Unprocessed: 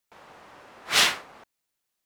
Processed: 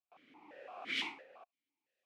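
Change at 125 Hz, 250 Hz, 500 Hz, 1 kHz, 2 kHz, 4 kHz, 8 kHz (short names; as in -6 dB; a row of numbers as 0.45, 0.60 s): -20.5, -8.5, -13.5, -17.0, -15.0, -17.5, -30.5 dB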